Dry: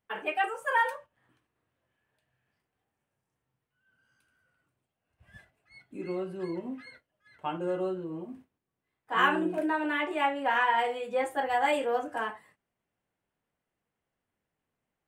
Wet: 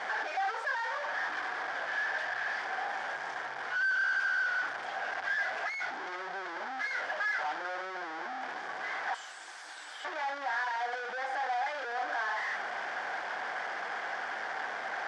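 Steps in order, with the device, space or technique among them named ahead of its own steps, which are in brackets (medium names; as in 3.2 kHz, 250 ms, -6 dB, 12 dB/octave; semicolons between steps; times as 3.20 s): 9.14–10.05 s: inverse Chebyshev high-pass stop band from 2.1 kHz, stop band 60 dB; home computer beeper (one-bit comparator; cabinet simulation 740–4600 Hz, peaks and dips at 760 Hz +9 dB, 1.6 kHz +9 dB, 2.7 kHz -9 dB, 4 kHz -8 dB)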